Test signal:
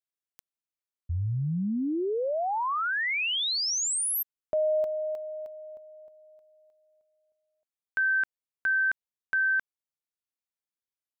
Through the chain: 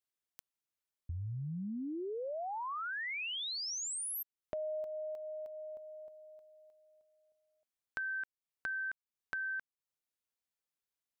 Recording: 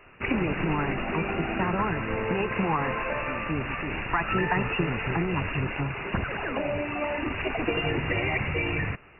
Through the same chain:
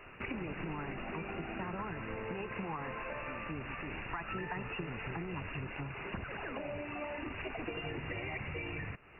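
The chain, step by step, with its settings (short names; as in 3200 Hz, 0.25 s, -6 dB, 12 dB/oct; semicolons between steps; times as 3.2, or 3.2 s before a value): compressor 2.5:1, threshold -44 dBFS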